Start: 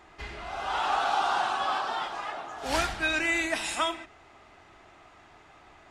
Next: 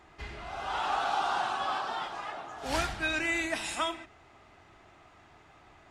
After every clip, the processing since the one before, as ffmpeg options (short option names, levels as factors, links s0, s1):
-af "equalizer=f=110:t=o:w=2.1:g=5,volume=0.668"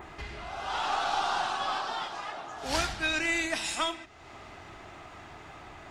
-af "adynamicequalizer=threshold=0.00282:dfrequency=5200:dqfactor=0.94:tfrequency=5200:tqfactor=0.94:attack=5:release=100:ratio=0.375:range=3:mode=boostabove:tftype=bell,acompressor=mode=upward:threshold=0.0158:ratio=2.5,aeval=exprs='0.168*(cos(1*acos(clip(val(0)/0.168,-1,1)))-cos(1*PI/2))+0.0237*(cos(2*acos(clip(val(0)/0.168,-1,1)))-cos(2*PI/2))':c=same"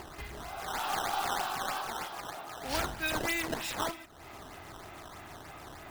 -filter_complex "[0:a]asplit=2[s0][s1];[s1]acompressor=mode=upward:threshold=0.0224:ratio=2.5,volume=0.794[s2];[s0][s2]amix=inputs=2:normalize=0,acrusher=samples=11:mix=1:aa=0.000001:lfo=1:lforange=17.6:lforate=3.2,volume=0.376"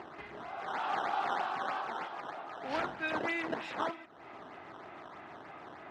-af "highpass=200,lowpass=2300"